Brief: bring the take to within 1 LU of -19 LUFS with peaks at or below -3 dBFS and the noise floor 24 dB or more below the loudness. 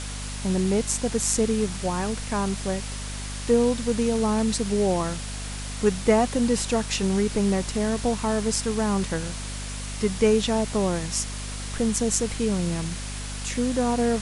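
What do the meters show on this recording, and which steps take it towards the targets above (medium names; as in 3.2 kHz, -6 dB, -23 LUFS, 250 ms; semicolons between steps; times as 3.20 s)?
hum 50 Hz; highest harmonic 250 Hz; hum level -32 dBFS; noise floor -33 dBFS; noise floor target -49 dBFS; loudness -25.0 LUFS; peak level -5.5 dBFS; loudness target -19.0 LUFS
-> de-hum 50 Hz, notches 5; noise reduction 16 dB, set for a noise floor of -33 dBFS; trim +6 dB; peak limiter -3 dBFS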